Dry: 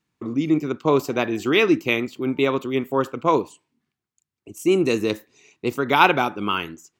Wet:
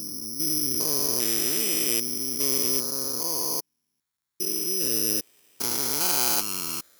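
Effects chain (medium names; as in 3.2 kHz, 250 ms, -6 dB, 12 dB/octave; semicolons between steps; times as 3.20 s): spectrogram pixelated in time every 400 ms; careless resampling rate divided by 8×, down none, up zero stuff; trim -9 dB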